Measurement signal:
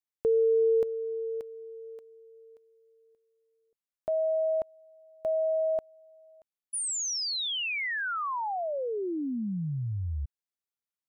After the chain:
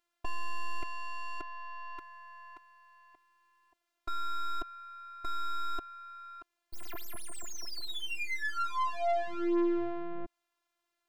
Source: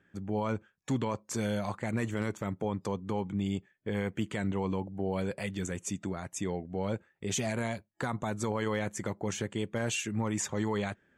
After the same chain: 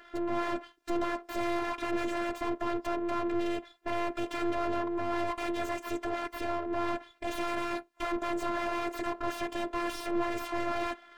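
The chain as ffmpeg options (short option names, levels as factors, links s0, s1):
-filter_complex "[0:a]aeval=exprs='abs(val(0))':c=same,asplit=2[s0][s1];[s1]highpass=f=720:p=1,volume=56.2,asoftclip=type=tanh:threshold=0.106[s2];[s0][s2]amix=inputs=2:normalize=0,lowpass=f=1000:p=1,volume=0.501,afftfilt=real='hypot(re,im)*cos(PI*b)':imag='0':win_size=512:overlap=0.75"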